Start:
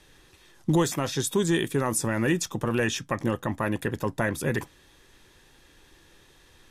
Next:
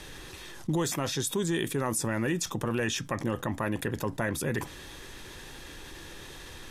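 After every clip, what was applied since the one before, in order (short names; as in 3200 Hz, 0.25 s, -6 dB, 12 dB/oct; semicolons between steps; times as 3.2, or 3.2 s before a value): fast leveller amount 50%; gain -7 dB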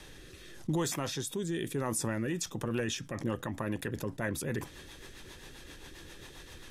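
rotary speaker horn 0.85 Hz, later 7.5 Hz, at 1.93; gain -2.5 dB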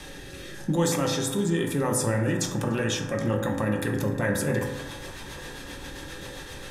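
compressor 1.5:1, threshold -38 dBFS, peak gain reduction 4 dB; narrowing echo 0.294 s, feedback 83%, band-pass 1000 Hz, level -15 dB; reverb RT60 1.2 s, pre-delay 3 ms, DRR 0 dB; gain +8 dB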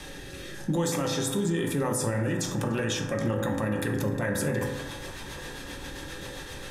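limiter -18.5 dBFS, peak gain reduction 5.5 dB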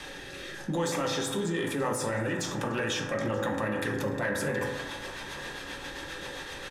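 flange 1.8 Hz, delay 0.4 ms, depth 8.1 ms, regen -73%; overdrive pedal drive 10 dB, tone 3500 Hz, clips at -20.5 dBFS; echo 0.93 s -21.5 dB; gain +2.5 dB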